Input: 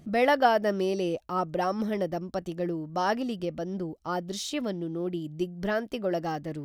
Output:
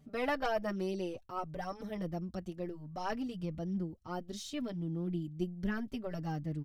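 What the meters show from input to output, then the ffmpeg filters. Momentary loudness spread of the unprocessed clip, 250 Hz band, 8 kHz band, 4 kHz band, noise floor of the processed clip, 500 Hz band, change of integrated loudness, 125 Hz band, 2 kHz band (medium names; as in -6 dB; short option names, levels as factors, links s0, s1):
10 LU, -6.0 dB, -10.0 dB, -10.0 dB, -57 dBFS, -11.0 dB, -9.0 dB, -2.0 dB, -9.5 dB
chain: -filter_complex "[0:a]aeval=exprs='0.335*(cos(1*acos(clip(val(0)/0.335,-1,1)))-cos(1*PI/2))+0.0531*(cos(4*acos(clip(val(0)/0.335,-1,1)))-cos(4*PI/2))+0.0168*(cos(6*acos(clip(val(0)/0.335,-1,1)))-cos(6*PI/2))':c=same,asubboost=boost=4.5:cutoff=210,asplit=2[s0][s1];[s1]adelay=4.7,afreqshift=0.66[s2];[s0][s2]amix=inputs=2:normalize=1,volume=0.447"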